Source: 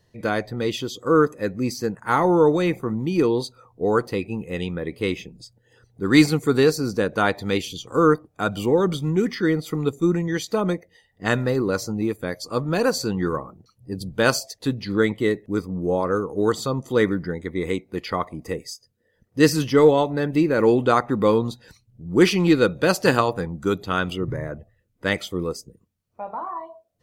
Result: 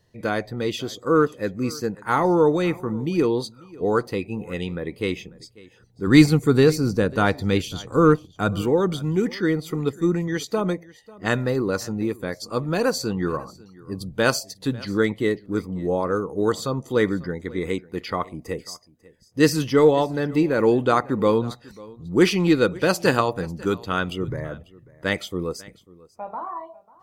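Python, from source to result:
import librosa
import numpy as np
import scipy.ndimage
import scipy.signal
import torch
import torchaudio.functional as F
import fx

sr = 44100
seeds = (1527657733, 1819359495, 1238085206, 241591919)

y = fx.low_shelf(x, sr, hz=180.0, db=10.5, at=(6.07, 8.62))
y = y + 10.0 ** (-22.0 / 20.0) * np.pad(y, (int(544 * sr / 1000.0), 0))[:len(y)]
y = y * 10.0 ** (-1.0 / 20.0)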